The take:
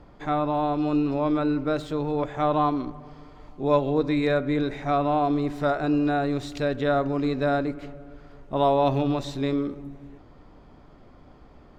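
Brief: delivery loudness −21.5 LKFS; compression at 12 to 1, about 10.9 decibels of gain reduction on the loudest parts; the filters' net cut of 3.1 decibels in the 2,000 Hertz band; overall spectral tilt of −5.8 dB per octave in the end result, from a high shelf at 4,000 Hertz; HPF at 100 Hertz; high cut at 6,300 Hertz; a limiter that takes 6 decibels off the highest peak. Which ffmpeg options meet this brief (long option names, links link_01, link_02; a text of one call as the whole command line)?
ffmpeg -i in.wav -af "highpass=100,lowpass=6300,equalizer=frequency=2000:width_type=o:gain=-6.5,highshelf=frequency=4000:gain=8.5,acompressor=threshold=-27dB:ratio=12,volume=12.5dB,alimiter=limit=-12.5dB:level=0:latency=1" out.wav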